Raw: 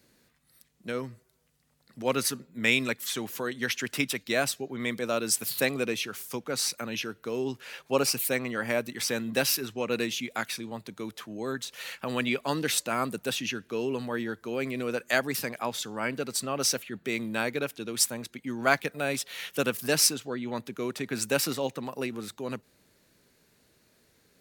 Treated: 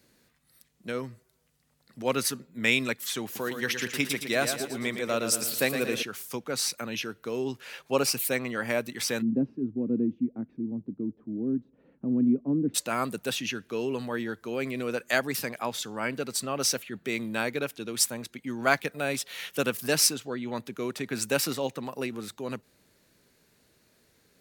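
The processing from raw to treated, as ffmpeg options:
ffmpeg -i in.wav -filter_complex "[0:a]asettb=1/sr,asplit=3[link_01][link_02][link_03];[link_01]atrim=end=3.244[link_04];[link_02]atrim=start=3.24:end=6.03,asetpts=PTS-STARTPTS,afade=type=in:duration=0.004:curve=qsin,afade=type=out:start_time=2.786:duration=0.004:curve=qsin,aecho=1:1:114|228|342|456|570:0.422|0.198|0.0932|0.0438|0.0206,atrim=end_sample=123039[link_05];[link_03]atrim=start=6.026[link_06];[link_04][link_05]acrossfade=duration=0.004:curve1=hsin:curve2=qsin[link_07];[link_07][link_06]acrossfade=duration=0.004:curve1=qsin:curve2=hsin,asplit=3[link_08][link_09][link_10];[link_08]afade=type=out:start_time=9.21:duration=0.02[link_11];[link_09]lowpass=frequency=270:width_type=q:width=3.2,afade=type=in:start_time=9.21:duration=0.02,afade=type=out:start_time=12.74:duration=0.02[link_12];[link_10]afade=type=in:start_time=12.74:duration=0.02[link_13];[link_11][link_12][link_13]amix=inputs=3:normalize=0" out.wav

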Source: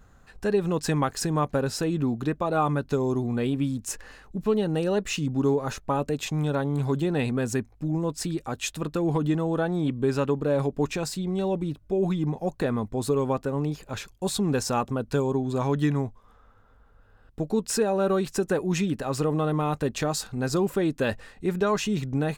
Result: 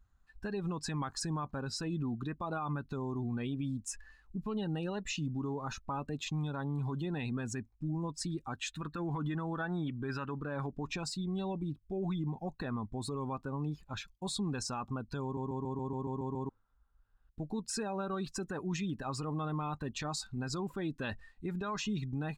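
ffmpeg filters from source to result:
ffmpeg -i in.wav -filter_complex "[0:a]asettb=1/sr,asplit=3[link_01][link_02][link_03];[link_01]atrim=end=8.534[link_04];[link_02]atrim=start=8.53:end=10.7,asetpts=PTS-STARTPTS,afade=type=in:duration=0.004:curve=qsin,afade=type=out:start_time=2.166:duration=0.004:curve=qsin,equalizer=frequency=1600:width=1.5:gain=7[link_05];[link_03]atrim=start=10.696[link_06];[link_04][link_05]acrossfade=duration=0.004:curve1=hsin:curve2=qsin[link_07];[link_07][link_06]acrossfade=duration=0.004:curve1=qsin:curve2=hsin,asplit=10[link_08][link_09][link_10][link_11][link_12][link_13][link_14][link_15][link_16][link_17];[link_08]atrim=end=15.372[link_18];[link_09]atrim=start=15.228:end=15.372[link_19];[link_10]atrim=start=15.228:end=15.372[link_20];[link_11]atrim=start=15.228:end=15.372[link_21];[link_12]atrim=start=15.228:end=15.372[link_22];[link_13]atrim=start=15.228:end=15.372[link_23];[link_14]atrim=start=15.228:end=15.372[link_24];[link_15]atrim=start=15.228:end=15.372[link_25];[link_16]atrim=start=15.228:end=15.372[link_26];[link_17]atrim=start=16.488[link_27];[link_18][link_19]acrossfade=duration=0.004:curve1=hsin:curve2=hsin[link_28];[link_28][link_20]acrossfade=duration=0.004:curve1=hsin:curve2=hsin[link_29];[link_29][link_21]acrossfade=duration=0.004:curve1=hsin:curve2=hsin[link_30];[link_30][link_22]acrossfade=duration=0.004:curve1=hsin:curve2=hsin[link_31];[link_31][link_23]acrossfade=duration=0.004:curve1=hsin:curve2=hsin[link_32];[link_32][link_24]acrossfade=duration=0.004:curve1=hsin:curve2=hsin[link_33];[link_33][link_25]acrossfade=duration=0.004:curve1=hsin:curve2=hsin[link_34];[link_34][link_26]acrossfade=duration=0.004:curve1=hsin:curve2=hsin[link_35];[link_35][link_27]acrossfade=duration=0.004:curve1=hsin:curve2=hsin,equalizer=frequency=500:width_type=o:width=1:gain=-9,equalizer=frequency=1000:width_type=o:width=1:gain=4,equalizer=frequency=4000:width_type=o:width=1:gain=4,afftdn=noise_reduction=16:noise_floor=-37,alimiter=limit=-22dB:level=0:latency=1:release=53,volume=-6dB" out.wav

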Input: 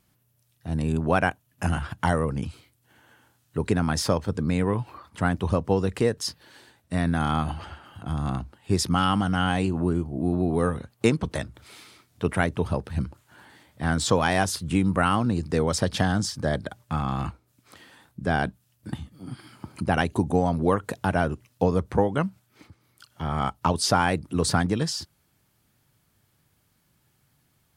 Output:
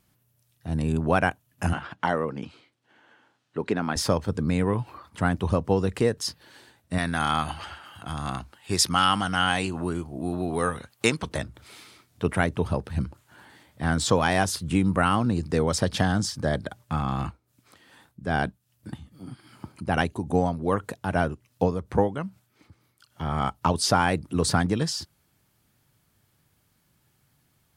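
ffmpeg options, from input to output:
ffmpeg -i in.wav -filter_complex "[0:a]asettb=1/sr,asplit=3[link_01][link_02][link_03];[link_01]atrim=end=1.734[link_04];[link_02]atrim=start=1.73:end=3.96,asetpts=PTS-STARTPTS,afade=type=in:duration=0.004:curve=qsin,afade=type=out:start_time=2.226:duration=0.004:curve=qsin,highpass=230,lowpass=4300[link_05];[link_03]atrim=start=3.956[link_06];[link_04][link_05]acrossfade=duration=0.004:curve1=hsin:curve2=qsin[link_07];[link_07][link_06]acrossfade=duration=0.004:curve1=qsin:curve2=hsin,asettb=1/sr,asplit=3[link_08][link_09][link_10];[link_08]atrim=end=6.984[link_11];[link_09]atrim=start=6.98:end=11.29,asetpts=PTS-STARTPTS,afade=type=in:duration=0.004:curve=qsin,afade=type=out:start_time=4.306:duration=0.004:curve=qsin,tiltshelf=frequency=700:gain=-6.5[link_12];[link_10]atrim=start=11.286[link_13];[link_11][link_12]acrossfade=duration=0.004:curve1=hsin:curve2=qsin[link_14];[link_14][link_13]acrossfade=duration=0.004:curve1=qsin:curve2=hsin,asplit=3[link_15][link_16][link_17];[link_15]afade=type=out:start_time=17.23:duration=0.02[link_18];[link_16]tremolo=f=2.5:d=0.57,afade=type=in:start_time=17.23:duration=0.02,afade=type=out:start_time=23.25:duration=0.02[link_19];[link_17]afade=type=in:start_time=23.25:duration=0.02[link_20];[link_18][link_19][link_20]amix=inputs=3:normalize=0" out.wav

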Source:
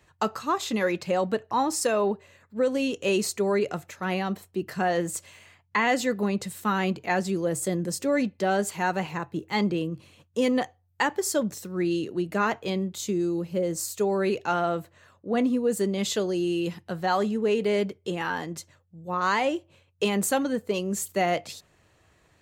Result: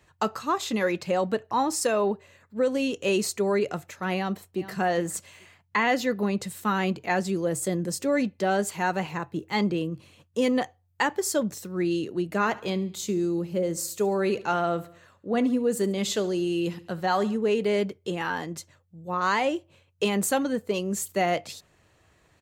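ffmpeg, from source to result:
ffmpeg -i in.wav -filter_complex "[0:a]asplit=2[link_01][link_02];[link_02]afade=type=in:start_time=4.15:duration=0.01,afade=type=out:start_time=4.77:duration=0.01,aecho=0:1:420|840:0.177828|0.0266742[link_03];[link_01][link_03]amix=inputs=2:normalize=0,asettb=1/sr,asplit=3[link_04][link_05][link_06];[link_04]atrim=end=5.834[link_07];[link_05]atrim=start=5.83:end=6.28,asetpts=PTS-STARTPTS,afade=type=in:duration=0.004:curve=qsin,afade=type=out:start_time=0.446:duration=0.004:curve=qsin,equalizer=frequency=8000:width=4.4:gain=-13.5[link_08];[link_06]atrim=start=6.276[link_09];[link_07][link_08]acrossfade=duration=0.004:curve1=hsin:curve2=qsin[link_10];[link_10][link_09]acrossfade=duration=0.004:curve1=qsin:curve2=hsin,asplit=3[link_11][link_12][link_13];[link_11]afade=type=out:start_time=12.45:duration=0.02[link_14];[link_12]aecho=1:1:70|140|210|280:0.112|0.055|0.0269|0.0132,afade=type=in:start_time=12.45:duration=0.02,afade=type=out:start_time=17.35:duration=0.02[link_15];[link_13]afade=type=in:start_time=17.35:duration=0.02[link_16];[link_14][link_15][link_16]amix=inputs=3:normalize=0" out.wav

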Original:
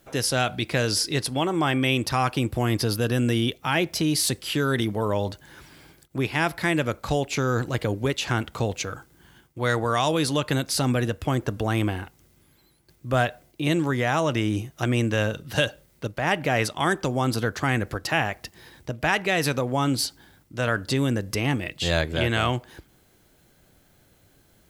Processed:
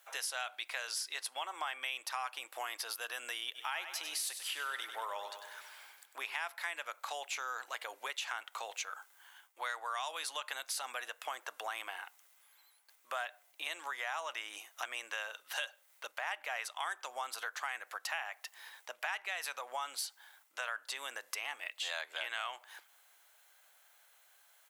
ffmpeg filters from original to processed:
ffmpeg -i in.wav -filter_complex "[0:a]asplit=3[link_01][link_02][link_03];[link_01]afade=type=out:start_time=3.54:duration=0.02[link_04];[link_02]aecho=1:1:98|196|294|392|490|588:0.282|0.155|0.0853|0.0469|0.0258|0.0142,afade=type=in:start_time=3.54:duration=0.02,afade=type=out:start_time=6.44:duration=0.02[link_05];[link_03]afade=type=in:start_time=6.44:duration=0.02[link_06];[link_04][link_05][link_06]amix=inputs=3:normalize=0,highpass=frequency=800:width=0.5412,highpass=frequency=800:width=1.3066,equalizer=frequency=4800:width_type=o:width=0.5:gain=-4.5,acompressor=threshold=-37dB:ratio=3,volume=-1.5dB" out.wav

